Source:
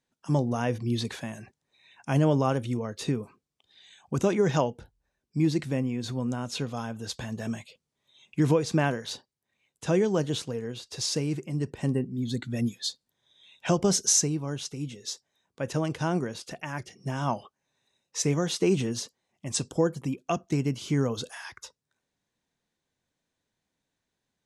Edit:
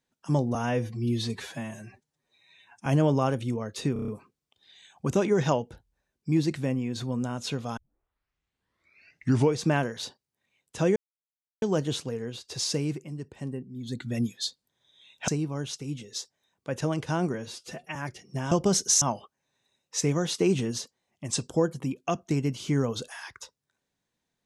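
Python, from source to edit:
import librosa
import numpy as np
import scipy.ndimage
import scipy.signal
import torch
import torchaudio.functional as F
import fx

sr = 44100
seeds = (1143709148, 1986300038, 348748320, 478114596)

y = fx.edit(x, sr, fx.stretch_span(start_s=0.55, length_s=1.54, factor=1.5),
    fx.stutter(start_s=3.16, slice_s=0.03, count=6),
    fx.tape_start(start_s=6.85, length_s=1.82),
    fx.insert_silence(at_s=10.04, length_s=0.66),
    fx.fade_down_up(start_s=11.29, length_s=1.21, db=-8.0, fade_s=0.28),
    fx.move(start_s=13.7, length_s=0.5, to_s=17.23),
    fx.stretch_span(start_s=16.26, length_s=0.41, factor=1.5), tone=tone)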